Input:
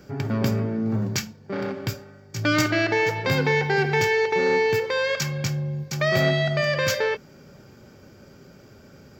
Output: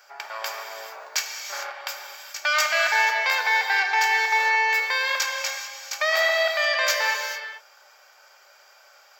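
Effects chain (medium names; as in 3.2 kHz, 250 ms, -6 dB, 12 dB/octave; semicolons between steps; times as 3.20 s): steep high-pass 700 Hz 36 dB/octave; gated-style reverb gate 460 ms flat, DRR 3 dB; trim +2.5 dB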